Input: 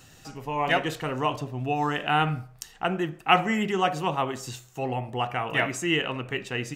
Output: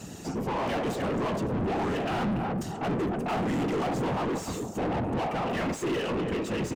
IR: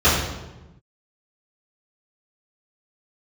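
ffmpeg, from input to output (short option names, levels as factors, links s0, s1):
-filter_complex "[0:a]firequalizer=gain_entry='entry(140,0);entry(590,-12);entry(1600,-20);entry(7000,-5)':delay=0.05:min_phase=1,asplit=2[s0][s1];[s1]adelay=287,lowpass=f=1400:p=1,volume=0.237,asplit=2[s2][s3];[s3]adelay=287,lowpass=f=1400:p=1,volume=0.25,asplit=2[s4][s5];[s5]adelay=287,lowpass=f=1400:p=1,volume=0.25[s6];[s0][s2][s4][s6]amix=inputs=4:normalize=0,afftfilt=real='hypot(re,im)*cos(2*PI*random(0))':imag='hypot(re,im)*sin(2*PI*random(1))':win_size=512:overlap=0.75,asplit=2[s7][s8];[s8]highpass=f=720:p=1,volume=79.4,asoftclip=type=tanh:threshold=0.0668[s9];[s7][s9]amix=inputs=2:normalize=0,lowpass=f=1400:p=1,volume=0.501,volume=1.33"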